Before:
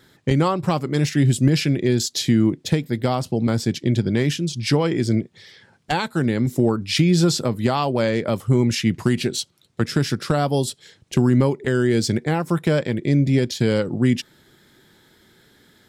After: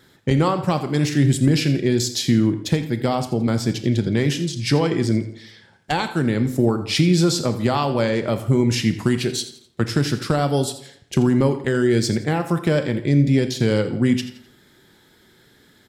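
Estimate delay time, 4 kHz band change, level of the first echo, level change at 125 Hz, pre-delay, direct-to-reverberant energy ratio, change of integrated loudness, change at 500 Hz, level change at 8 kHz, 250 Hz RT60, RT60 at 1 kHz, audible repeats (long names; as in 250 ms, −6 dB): 84 ms, +0.5 dB, −16.0 dB, 0.0 dB, 25 ms, 9.0 dB, +0.5 dB, +0.5 dB, +0.5 dB, 0.65 s, 0.70 s, 3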